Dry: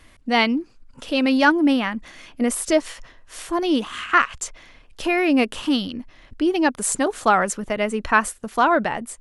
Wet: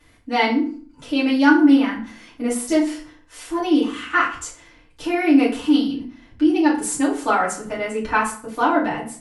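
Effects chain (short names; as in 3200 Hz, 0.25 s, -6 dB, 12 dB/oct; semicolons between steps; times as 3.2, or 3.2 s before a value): FDN reverb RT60 0.46 s, low-frequency decay 1.25×, high-frequency decay 0.75×, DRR -8 dB; gain -10 dB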